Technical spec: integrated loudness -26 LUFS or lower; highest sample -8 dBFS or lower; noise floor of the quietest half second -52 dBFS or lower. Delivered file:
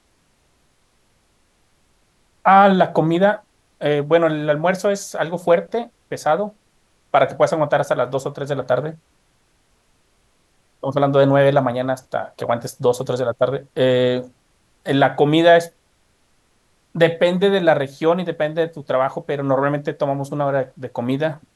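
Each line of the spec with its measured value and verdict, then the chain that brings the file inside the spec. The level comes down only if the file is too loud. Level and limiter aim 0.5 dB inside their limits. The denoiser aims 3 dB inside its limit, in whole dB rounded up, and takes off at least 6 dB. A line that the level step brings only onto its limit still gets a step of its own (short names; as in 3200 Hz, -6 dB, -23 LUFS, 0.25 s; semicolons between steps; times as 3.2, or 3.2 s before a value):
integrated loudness -18.5 LUFS: fail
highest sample -1.5 dBFS: fail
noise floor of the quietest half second -61 dBFS: OK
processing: gain -8 dB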